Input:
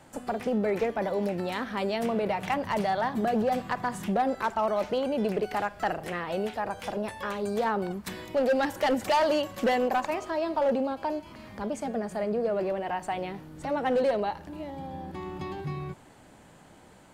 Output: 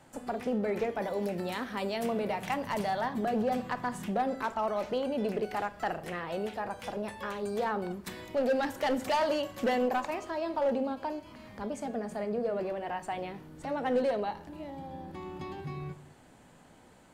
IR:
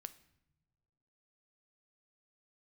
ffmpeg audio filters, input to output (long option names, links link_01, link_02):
-filter_complex "[0:a]asettb=1/sr,asplit=3[link_01][link_02][link_03];[link_01]atrim=end=0.954[link_04];[link_02]atrim=start=0.95:end=3.06,asetpts=PTS-STARTPTS,afade=type=in:duration=0.004:curve=qsin,afade=type=out:start_time=2.106:duration=0.004:curve=qsin,highshelf=frequency=6700:gain=7.5[link_05];[link_03]atrim=start=3.056[link_06];[link_04][link_05]acrossfade=duration=0.004:curve1=hsin:curve2=qsin[link_07];[link_07][link_06]acrossfade=duration=0.004:curve1=qsin:curve2=hsin[link_08];[1:a]atrim=start_sample=2205,afade=type=out:start_time=0.43:duration=0.01,atrim=end_sample=19404,asetrate=66150,aresample=44100[link_09];[link_08][link_09]afir=irnorm=-1:irlink=0,volume=5dB"